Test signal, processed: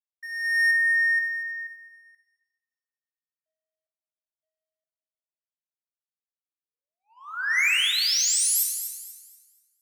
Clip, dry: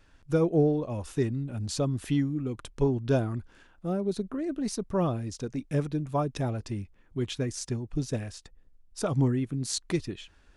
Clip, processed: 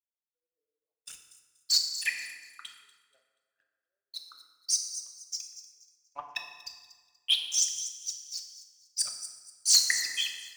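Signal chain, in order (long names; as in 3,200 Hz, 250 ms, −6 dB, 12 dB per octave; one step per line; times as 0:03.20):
spectral envelope exaggerated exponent 3
four-pole ladder high-pass 1,900 Hz, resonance 55%
notch filter 3,700 Hz, Q 24
leveller curve on the samples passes 3
automatic gain control gain up to 10 dB
on a send: delay with a high-pass on its return 240 ms, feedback 48%, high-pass 5,100 Hz, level −7 dB
on the sum: feedback delay network reverb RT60 3 s, high-frequency decay 0.55×, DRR 2 dB
in parallel at −8 dB: soft clipping −17 dBFS
on the sum: multiband upward and downward expander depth 70%
level −6 dB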